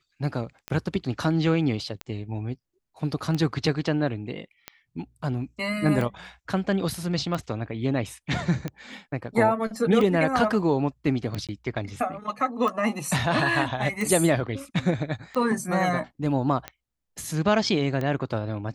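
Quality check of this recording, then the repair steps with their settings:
tick 45 rpm -17 dBFS
11.47–11.49 s: dropout 17 ms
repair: de-click; interpolate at 11.47 s, 17 ms

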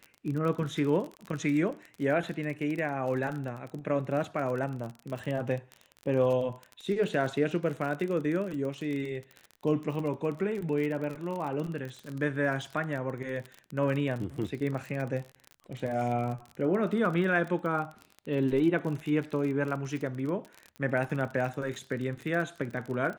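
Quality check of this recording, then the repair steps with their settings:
crackle 36 per s -34 dBFS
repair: de-click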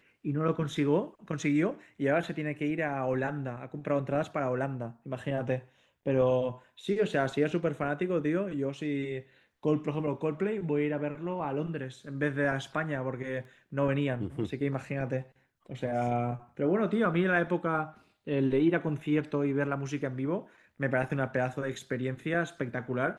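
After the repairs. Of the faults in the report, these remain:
nothing left

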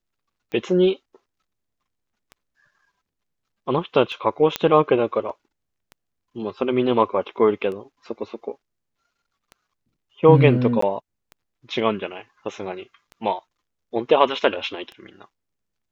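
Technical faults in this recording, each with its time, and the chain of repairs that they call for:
tick 33 1/3 rpm -24 dBFS
4.56 s: pop -6 dBFS
10.81–10.82 s: dropout 14 ms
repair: de-click; interpolate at 10.81 s, 14 ms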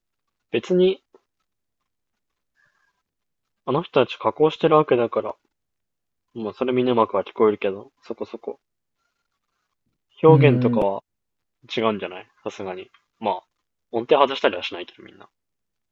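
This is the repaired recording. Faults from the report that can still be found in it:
nothing left

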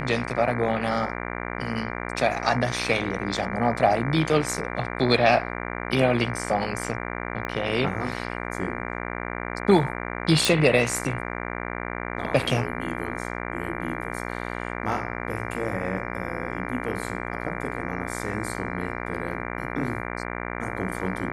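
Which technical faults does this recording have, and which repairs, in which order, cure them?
buzz 60 Hz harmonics 39 -32 dBFS
7.45 s: pop -17 dBFS
10.45 s: pop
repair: de-click; de-hum 60 Hz, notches 39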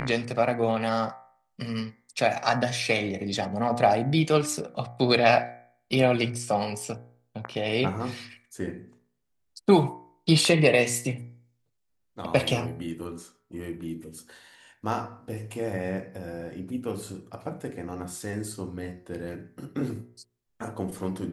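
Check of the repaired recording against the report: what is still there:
7.45 s: pop

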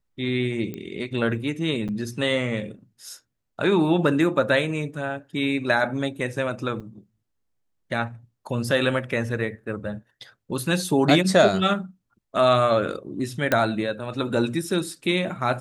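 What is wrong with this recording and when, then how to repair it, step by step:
0.74 s: pop -20 dBFS
1.88–1.89 s: dropout 7.4 ms
6.80–6.81 s: dropout 5.1 ms
13.52 s: pop -6 dBFS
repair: de-click; interpolate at 1.88 s, 7.4 ms; interpolate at 6.80 s, 5.1 ms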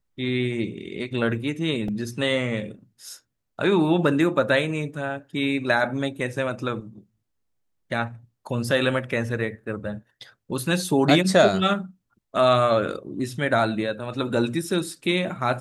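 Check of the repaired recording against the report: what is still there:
nothing left

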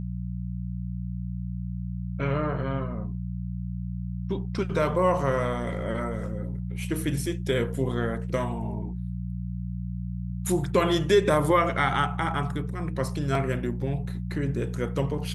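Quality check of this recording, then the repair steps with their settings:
hum 60 Hz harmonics 3 -32 dBFS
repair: de-hum 60 Hz, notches 3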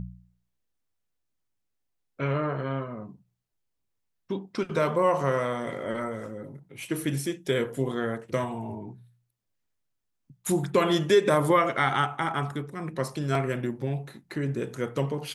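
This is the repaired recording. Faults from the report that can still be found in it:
nothing left

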